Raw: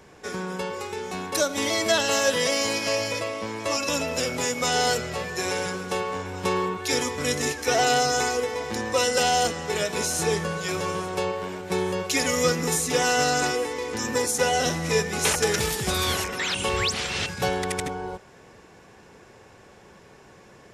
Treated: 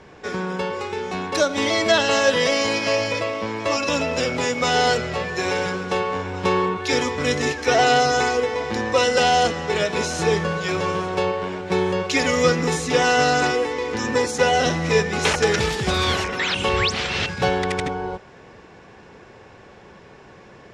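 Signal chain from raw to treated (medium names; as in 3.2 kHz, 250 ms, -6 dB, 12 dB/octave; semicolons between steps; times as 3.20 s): low-pass 4.5 kHz 12 dB/octave; trim +5 dB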